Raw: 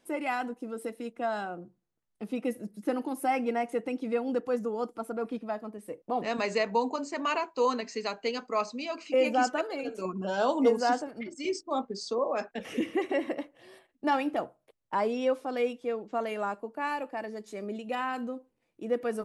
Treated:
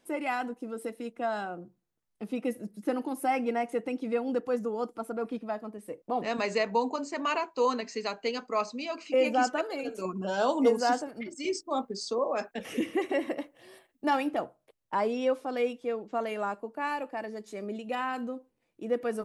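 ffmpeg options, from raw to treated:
-filter_complex "[0:a]asettb=1/sr,asplit=3[s0][s1][s2];[s0]atrim=end=9.664[s3];[s1]atrim=start=9.66:end=14.29,asetpts=PTS-STARTPTS,afade=t=in:d=0.004:c=qsin,afade=t=out:st=4.626:d=0.004:c=qsin,highshelf=f=9900:g=10.5[s4];[s2]atrim=start=14.286[s5];[s3][s4]acrossfade=d=0.004:c1=hsin:c2=qsin[s6];[s6][s5]acrossfade=d=0.004:c1=qsin:c2=hsin"

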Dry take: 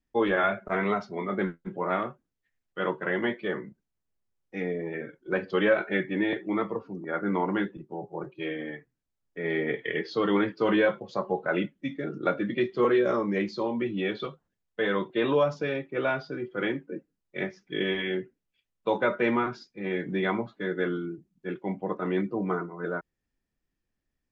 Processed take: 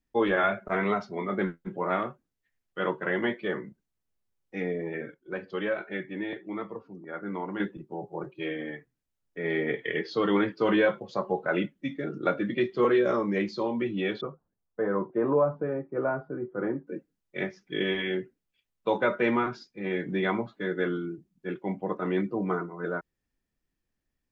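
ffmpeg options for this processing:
-filter_complex "[0:a]asettb=1/sr,asplit=3[s0][s1][s2];[s0]atrim=end=14.214[s3];[s1]atrim=start=14.21:end=16.87,asetpts=PTS-STARTPTS,afade=t=in:d=0.004:c=qsin,afade=t=out:st=2.656:d=0.004:c=qsin,lowpass=f=1300:w=0.5412,lowpass=f=1300:w=1.3066[s4];[s2]atrim=start=16.866[s5];[s3][s4]acrossfade=d=0.004:c1=hsin:c2=qsin[s6];[s6][s5]acrossfade=d=0.004:c1=qsin:c2=hsin,asplit=3[s7][s8][s9];[s7]atrim=end=5.142[s10];[s8]atrim=start=5.138:end=7.602,asetpts=PTS-STARTPTS,volume=0.447[s11];[s9]atrim=start=7.598[s12];[s10][s11]acrossfade=d=0.004:c1=hsin:c2=hsin[s13];[s13][s12]acrossfade=d=0.004:c1=hsin:c2=hsin"

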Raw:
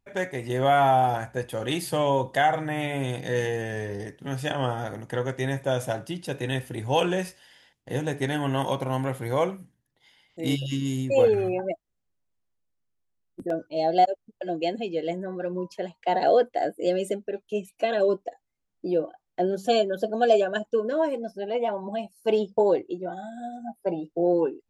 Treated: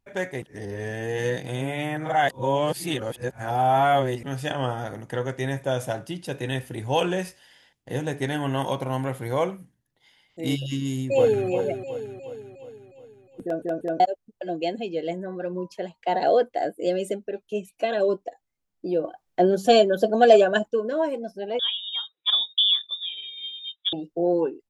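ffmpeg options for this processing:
-filter_complex "[0:a]asplit=2[s0][s1];[s1]afade=t=in:st=10.79:d=0.01,afade=t=out:st=11.47:d=0.01,aecho=0:1:360|720|1080|1440|1800|2160|2520:0.375837|0.206711|0.113691|0.0625299|0.0343915|0.0189153|0.0104034[s2];[s0][s2]amix=inputs=2:normalize=0,asettb=1/sr,asplit=3[s3][s4][s5];[s3]atrim=end=19.044[s6];[s4]atrim=start=19.04:end=20.68,asetpts=PTS-STARTPTS,afade=t=in:d=0.004:c=qsin,afade=t=out:st=1.636:d=0.004:c=qsin,acontrast=52[s7];[s5]atrim=start=20.676[s8];[s6][s7]acrossfade=d=0.004:c1=hsin:c2=qsin[s9];[s9][s8]acrossfade=d=0.004:c1=qsin:c2=hsin,asettb=1/sr,asplit=3[s10][s11][s12];[s10]atrim=end=21.594[s13];[s11]atrim=start=21.59:end=23.93,asetpts=PTS-STARTPTS,afade=t=in:d=0.004:c=qsin,afade=t=out:st=2.336:d=0.004:c=qsin,lowpass=f=3300:t=q:w=0.5098,lowpass=f=3300:t=q:w=0.6013,lowpass=f=3300:t=q:w=0.9,lowpass=f=3300:t=q:w=2.563,afreqshift=-3900[s14];[s12]atrim=start=23.926[s15];[s13][s14]acrossfade=d=0.004:c1=hsin:c2=qsin[s16];[s16][s15]acrossfade=d=0.004:c1=qsin:c2=hsin,asplit=6[s17][s18][s19][s20][s21][s22];[s17]atrim=end=0.422[s23];[s18]atrim=start=0.418:end=4.232,asetpts=PTS-STARTPTS,areverse[s24];[s19]atrim=start=4.228:end=13.622[s25];[s20]atrim=start=13.428:end=13.622[s26];[s21]atrim=start=13.428:end=13.622[s27];[s22]atrim=start=13.998[s28];[s23][s24]acrossfade=d=0.004:c1=hsin:c2=hsin[s29];[s29][s25]acrossfade=d=0.004:c1=hsin:c2=hsin[s30];[s30][s26]acrossfade=d=0.004:c1=hsin:c2=hsin[s31];[s31][s27]acrossfade=d=0.004:c1=hsin:c2=hsin[s32];[s32][s28]acrossfade=d=0.004:c1=hsin:c2=hsin"

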